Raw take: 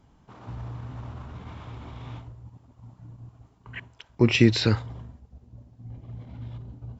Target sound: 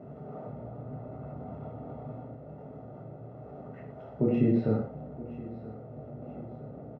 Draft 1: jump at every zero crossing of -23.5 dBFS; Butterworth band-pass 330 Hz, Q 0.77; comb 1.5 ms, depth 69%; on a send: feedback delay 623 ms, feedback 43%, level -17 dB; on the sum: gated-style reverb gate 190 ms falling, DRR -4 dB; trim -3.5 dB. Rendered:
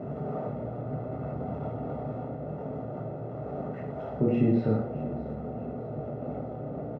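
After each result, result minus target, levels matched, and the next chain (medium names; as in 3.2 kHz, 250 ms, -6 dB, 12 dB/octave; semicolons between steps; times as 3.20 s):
echo 349 ms early; jump at every zero crossing: distortion +8 dB
jump at every zero crossing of -23.5 dBFS; Butterworth band-pass 330 Hz, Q 0.77; comb 1.5 ms, depth 69%; on a send: feedback delay 972 ms, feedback 43%, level -17 dB; on the sum: gated-style reverb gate 190 ms falling, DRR -4 dB; trim -3.5 dB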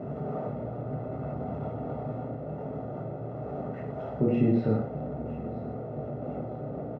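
jump at every zero crossing: distortion +8 dB
jump at every zero crossing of -33.5 dBFS; Butterworth band-pass 330 Hz, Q 0.77; comb 1.5 ms, depth 69%; on a send: feedback delay 972 ms, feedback 43%, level -17 dB; on the sum: gated-style reverb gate 190 ms falling, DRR -4 dB; trim -3.5 dB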